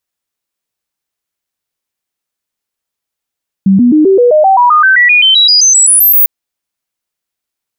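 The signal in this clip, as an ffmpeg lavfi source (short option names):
-f lavfi -i "aevalsrc='0.708*clip(min(mod(t,0.13),0.13-mod(t,0.13))/0.005,0,1)*sin(2*PI*193*pow(2,floor(t/0.13)/3)*mod(t,0.13))':d=2.6:s=44100"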